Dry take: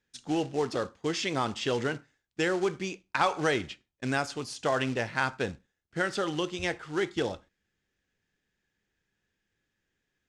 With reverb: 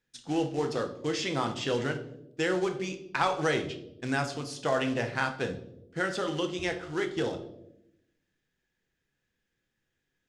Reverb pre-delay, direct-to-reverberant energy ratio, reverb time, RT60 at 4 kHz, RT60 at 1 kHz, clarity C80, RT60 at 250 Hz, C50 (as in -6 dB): 4 ms, 5.5 dB, 0.85 s, 0.55 s, 0.65 s, 14.5 dB, 1.2 s, 11.0 dB